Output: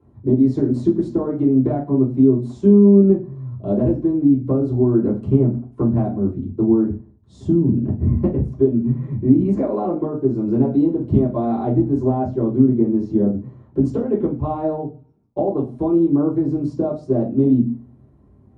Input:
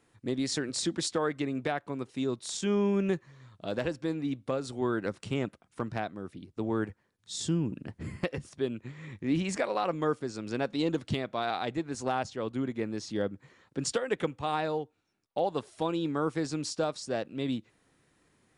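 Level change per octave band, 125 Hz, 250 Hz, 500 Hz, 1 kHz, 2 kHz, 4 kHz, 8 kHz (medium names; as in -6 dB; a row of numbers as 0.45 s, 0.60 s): +17.0 dB, +17.0 dB, +12.0 dB, +4.0 dB, under -10 dB, under -15 dB, under -20 dB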